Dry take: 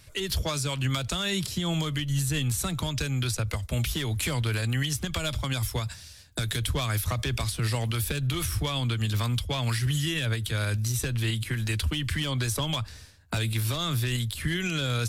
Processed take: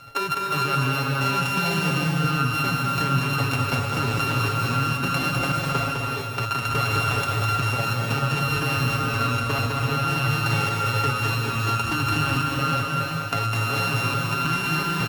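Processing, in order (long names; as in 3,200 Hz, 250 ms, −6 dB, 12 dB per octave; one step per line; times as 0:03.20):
samples sorted by size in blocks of 32 samples
high-pass filter 260 Hz 6 dB per octave
high-shelf EQ 7,600 Hz −11.5 dB
comb filter 7.2 ms, depth 91%
brickwall limiter −20.5 dBFS, peak gain reduction 7 dB
downward compressor, threshold −31 dBFS, peak gain reduction 6 dB
gate pattern "xx.xxx.xxx" 87 BPM
on a send: single-tap delay 205 ms −4 dB
on the sum: reverb whose tail is shaped and stops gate 470 ms rising, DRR −0.5 dB
level +9 dB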